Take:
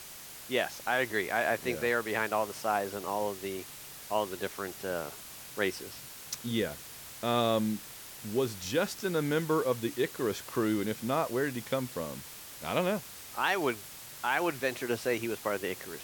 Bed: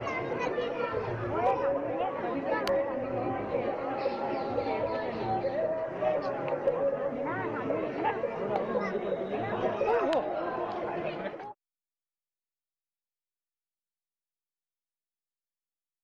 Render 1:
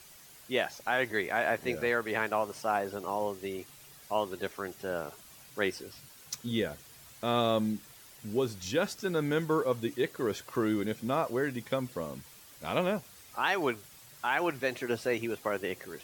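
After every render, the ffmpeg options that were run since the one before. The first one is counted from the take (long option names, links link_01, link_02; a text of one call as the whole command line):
ffmpeg -i in.wav -af "afftdn=noise_reduction=9:noise_floor=-47" out.wav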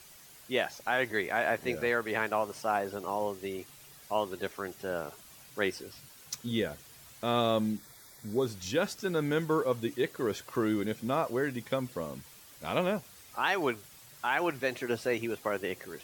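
ffmpeg -i in.wav -filter_complex "[0:a]asettb=1/sr,asplit=3[link_01][link_02][link_03];[link_01]atrim=end=7.774[link_04];[link_02]atrim=start=7.77:end=8.46,asetpts=PTS-STARTPTS,afade=type=in:duration=0.004:curve=qsin,afade=type=out:start_time=0.686:duration=0.004:curve=qsin,asuperstop=centerf=2800:order=20:qfactor=3.1[link_05];[link_03]atrim=start=8.456[link_06];[link_04][link_05]acrossfade=duration=0.004:curve1=hsin:curve2=qsin[link_07];[link_07][link_06]acrossfade=duration=0.004:curve1=qsin:curve2=hsin" out.wav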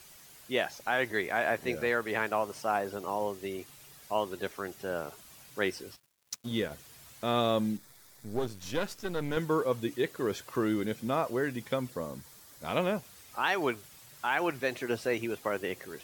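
ffmpeg -i in.wav -filter_complex "[0:a]asplit=3[link_01][link_02][link_03];[link_01]afade=type=out:start_time=5.95:duration=0.02[link_04];[link_02]aeval=exprs='sgn(val(0))*max(abs(val(0))-0.00447,0)':channel_layout=same,afade=type=in:start_time=5.95:duration=0.02,afade=type=out:start_time=6.7:duration=0.02[link_05];[link_03]afade=type=in:start_time=6.7:duration=0.02[link_06];[link_04][link_05][link_06]amix=inputs=3:normalize=0,asettb=1/sr,asplit=3[link_07][link_08][link_09];[link_07]atrim=end=7.774[link_10];[link_08]atrim=start=7.77:end=9.37,asetpts=PTS-STARTPTS,afade=type=in:duration=0.004:curve=qsin,afade=type=out:start_time=1.596:duration=0.004:curve=qsin,aeval=exprs='if(lt(val(0),0),0.251*val(0),val(0))':channel_layout=same[link_11];[link_09]atrim=start=9.366[link_12];[link_10][link_11]acrossfade=duration=0.004:curve1=hsin:curve2=qsin[link_13];[link_13][link_12]acrossfade=duration=0.004:curve1=qsin:curve2=hsin,asettb=1/sr,asplit=3[link_14][link_15][link_16];[link_14]atrim=end=11.904[link_17];[link_15]atrim=start=11.9:end=12.69,asetpts=PTS-STARTPTS,afade=type=in:duration=0.004:curve=qsin,afade=type=out:start_time=0.786:duration=0.004:curve=qsin,equalizer=frequency=2700:width=2.8:gain=-7.5[link_18];[link_16]atrim=start=12.686[link_19];[link_17][link_18]acrossfade=duration=0.004:curve1=hsin:curve2=qsin[link_20];[link_20][link_19]acrossfade=duration=0.004:curve1=qsin:curve2=hsin" out.wav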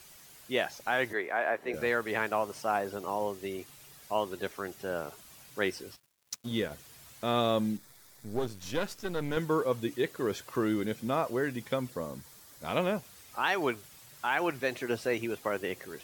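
ffmpeg -i in.wav -filter_complex "[0:a]asettb=1/sr,asplit=3[link_01][link_02][link_03];[link_01]atrim=end=1.134[link_04];[link_02]atrim=start=1.13:end=1.74,asetpts=PTS-STARTPTS,afade=type=in:duration=0.004:curve=qsin,afade=type=out:start_time=0.606:duration=0.004:curve=qsin,acrossover=split=280 2400:gain=0.158 1 0.251[link_05][link_06][link_07];[link_05][link_06][link_07]amix=inputs=3:normalize=0[link_08];[link_03]atrim=start=1.736[link_09];[link_04][link_08]acrossfade=duration=0.004:curve1=hsin:curve2=qsin[link_10];[link_10][link_09]acrossfade=duration=0.004:curve1=qsin:curve2=hsin" out.wav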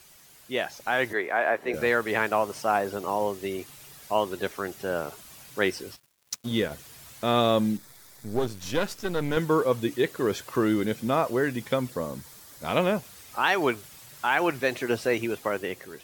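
ffmpeg -i in.wav -af "dynaudnorm=framelen=250:gausssize=7:maxgain=5.5dB" out.wav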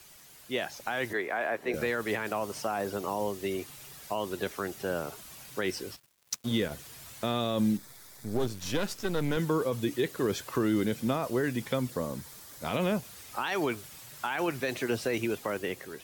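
ffmpeg -i in.wav -filter_complex "[0:a]alimiter=limit=-16dB:level=0:latency=1:release=19,acrossover=split=310|3000[link_01][link_02][link_03];[link_02]acompressor=threshold=-33dB:ratio=2[link_04];[link_01][link_04][link_03]amix=inputs=3:normalize=0" out.wav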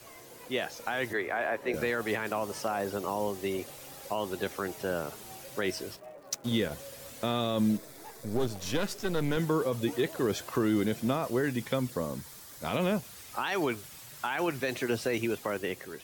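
ffmpeg -i in.wav -i bed.wav -filter_complex "[1:a]volume=-19.5dB[link_01];[0:a][link_01]amix=inputs=2:normalize=0" out.wav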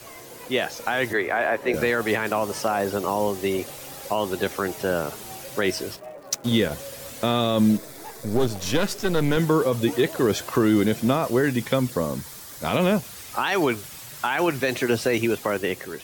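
ffmpeg -i in.wav -af "volume=8dB" out.wav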